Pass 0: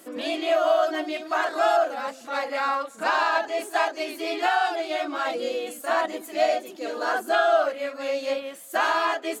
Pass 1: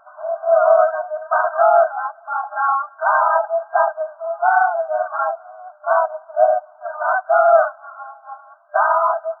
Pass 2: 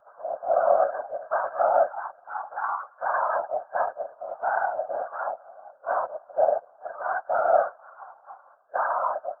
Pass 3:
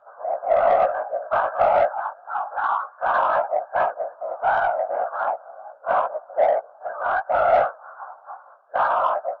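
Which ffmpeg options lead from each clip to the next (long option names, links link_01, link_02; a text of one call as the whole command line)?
ffmpeg -i in.wav -af "afftfilt=real='re*between(b*sr/4096,600,1600)':imag='im*between(b*sr/4096,600,1600)':win_size=4096:overlap=0.75,volume=8dB" out.wav
ffmpeg -i in.wav -af "equalizer=frequency=1500:width_type=o:width=2:gain=-5.5,afftfilt=real='hypot(re,im)*cos(2*PI*random(0))':imag='hypot(re,im)*sin(2*PI*random(1))':win_size=512:overlap=0.75" out.wav
ffmpeg -i in.wav -filter_complex "[0:a]asplit=2[link_01][link_02];[link_02]highpass=frequency=720:poles=1,volume=14dB,asoftclip=type=tanh:threshold=-8dB[link_03];[link_01][link_03]amix=inputs=2:normalize=0,lowpass=frequency=1700:poles=1,volume=-6dB,flanger=delay=16:depth=4.2:speed=2.6,volume=3.5dB" out.wav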